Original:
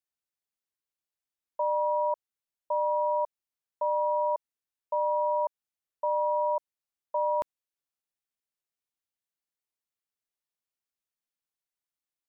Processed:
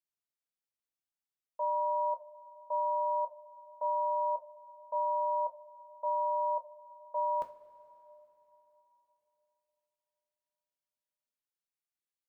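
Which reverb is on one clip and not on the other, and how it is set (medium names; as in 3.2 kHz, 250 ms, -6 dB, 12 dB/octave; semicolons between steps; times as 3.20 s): two-slope reverb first 0.29 s, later 3.7 s, from -19 dB, DRR 4 dB; trim -7.5 dB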